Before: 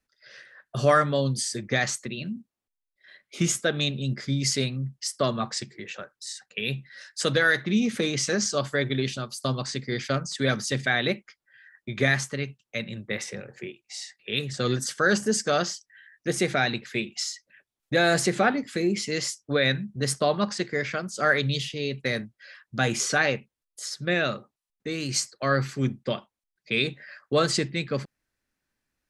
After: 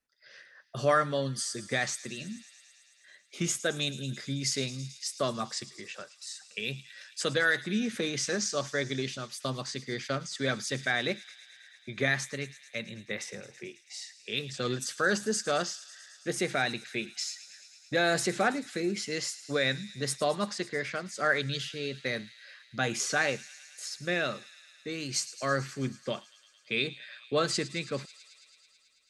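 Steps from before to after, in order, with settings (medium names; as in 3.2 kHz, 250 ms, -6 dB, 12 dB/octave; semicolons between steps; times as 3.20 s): bass shelf 160 Hz -7 dB; on a send: feedback echo behind a high-pass 109 ms, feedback 80%, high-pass 3 kHz, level -14.5 dB; on the sum: trim -4.5 dB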